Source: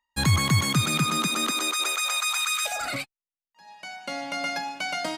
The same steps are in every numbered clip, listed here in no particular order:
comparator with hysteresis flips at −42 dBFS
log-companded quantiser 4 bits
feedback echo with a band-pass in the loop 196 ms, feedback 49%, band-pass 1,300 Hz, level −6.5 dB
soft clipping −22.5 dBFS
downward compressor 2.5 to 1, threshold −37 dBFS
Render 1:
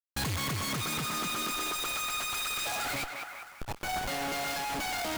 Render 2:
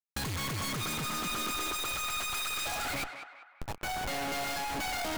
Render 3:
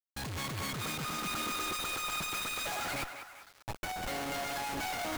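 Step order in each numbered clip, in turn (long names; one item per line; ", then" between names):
comparator with hysteresis, then feedback echo with a band-pass in the loop, then soft clipping, then downward compressor, then log-companded quantiser
comparator with hysteresis, then soft clipping, then log-companded quantiser, then downward compressor, then feedback echo with a band-pass in the loop
downward compressor, then soft clipping, then comparator with hysteresis, then feedback echo with a band-pass in the loop, then log-companded quantiser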